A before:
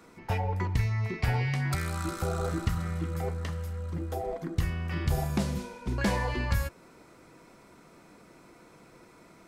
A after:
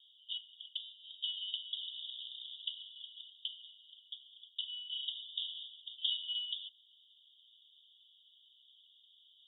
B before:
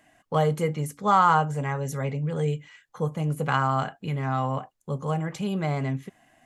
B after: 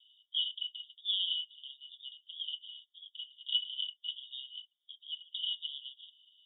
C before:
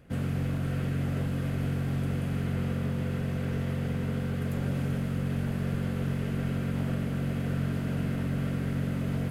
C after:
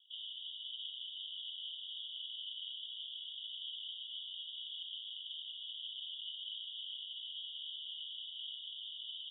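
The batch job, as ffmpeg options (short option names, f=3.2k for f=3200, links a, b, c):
-af "asuperpass=centerf=3300:order=20:qfactor=4.1,volume=13.5dB"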